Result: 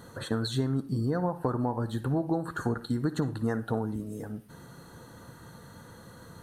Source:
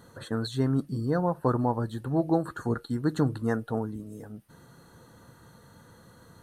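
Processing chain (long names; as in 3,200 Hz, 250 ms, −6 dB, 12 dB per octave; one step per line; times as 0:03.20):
downward compressor 12 to 1, threshold −29 dBFS, peak gain reduction 11.5 dB
on a send: convolution reverb RT60 0.45 s, pre-delay 55 ms, DRR 12.5 dB
on the sum: level +4.5 dB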